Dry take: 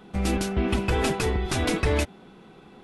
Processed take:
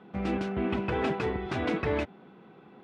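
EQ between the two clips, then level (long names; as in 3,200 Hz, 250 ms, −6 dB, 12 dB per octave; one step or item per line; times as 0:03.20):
band-pass filter 120–2,400 Hz
−3.0 dB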